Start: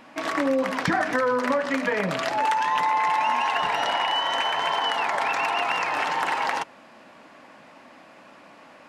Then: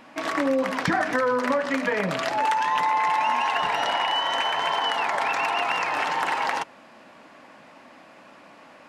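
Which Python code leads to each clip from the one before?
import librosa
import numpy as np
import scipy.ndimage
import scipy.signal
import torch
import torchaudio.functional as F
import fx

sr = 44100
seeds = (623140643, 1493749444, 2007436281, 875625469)

y = x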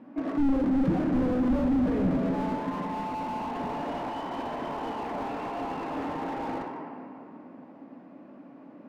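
y = fx.bandpass_q(x, sr, hz=250.0, q=1.9)
y = fx.room_shoebox(y, sr, seeds[0], volume_m3=120.0, walls='hard', distance_m=0.32)
y = fx.slew_limit(y, sr, full_power_hz=10.0)
y = F.gain(torch.from_numpy(y), 6.5).numpy()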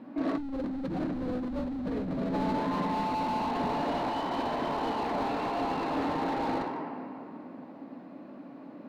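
y = fx.over_compress(x, sr, threshold_db=-30.0, ratio=-1.0)
y = fx.peak_eq(y, sr, hz=4100.0, db=9.0, octaves=0.36)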